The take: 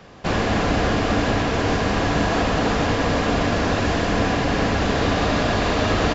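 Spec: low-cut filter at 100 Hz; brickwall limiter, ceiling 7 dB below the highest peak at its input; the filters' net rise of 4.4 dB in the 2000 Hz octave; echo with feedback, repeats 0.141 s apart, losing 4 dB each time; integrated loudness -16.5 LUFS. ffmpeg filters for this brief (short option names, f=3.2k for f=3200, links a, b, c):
-af "highpass=100,equalizer=f=2k:t=o:g=5.5,alimiter=limit=-14dB:level=0:latency=1,aecho=1:1:141|282|423|564|705|846|987|1128|1269:0.631|0.398|0.25|0.158|0.0994|0.0626|0.0394|0.0249|0.0157,volume=4dB"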